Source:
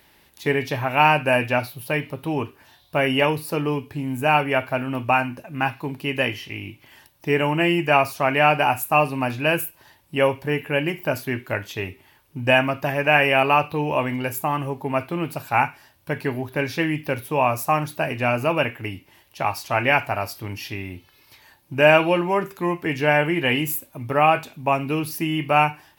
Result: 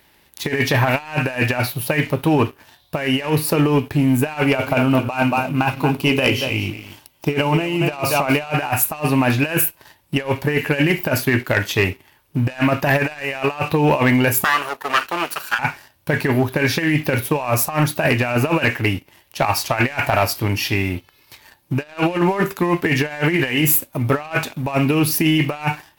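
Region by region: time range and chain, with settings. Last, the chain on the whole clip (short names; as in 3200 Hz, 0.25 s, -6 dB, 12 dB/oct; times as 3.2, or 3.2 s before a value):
4.44–8.54 bell 1800 Hz -14.5 dB 0.28 oct + notches 60/120/180/240/300/360/420/480/540 Hz + echo 0.23 s -12.5 dB
14.44–15.59 minimum comb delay 0.7 ms + HPF 650 Hz + notch 7800 Hz, Q 28
whole clip: dynamic EQ 1800 Hz, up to +5 dB, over -38 dBFS, Q 3.5; negative-ratio compressor -24 dBFS, ratio -0.5; sample leveller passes 2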